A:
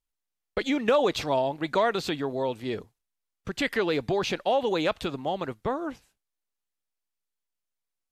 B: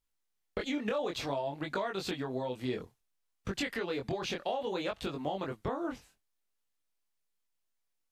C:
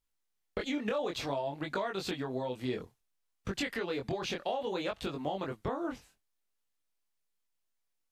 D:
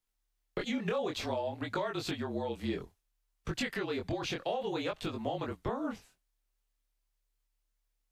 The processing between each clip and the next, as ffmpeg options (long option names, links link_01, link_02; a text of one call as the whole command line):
ffmpeg -i in.wav -af "acompressor=threshold=-34dB:ratio=6,flanger=delay=20:depth=4.1:speed=0.58,volume=5dB" out.wav
ffmpeg -i in.wav -af anull out.wav
ffmpeg -i in.wav -af "afreqshift=-36" out.wav